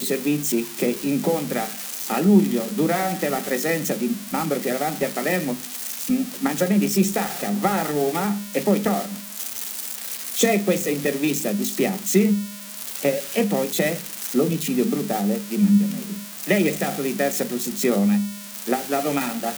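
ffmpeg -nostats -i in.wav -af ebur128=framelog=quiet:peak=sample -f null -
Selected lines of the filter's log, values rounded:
Integrated loudness:
  I:         -22.6 LUFS
  Threshold: -32.6 LUFS
Loudness range:
  LRA:         1.8 LU
  Threshold: -42.6 LUFS
  LRA low:   -23.6 LUFS
  LRA high:  -21.8 LUFS
Sample peak:
  Peak:       -4.7 dBFS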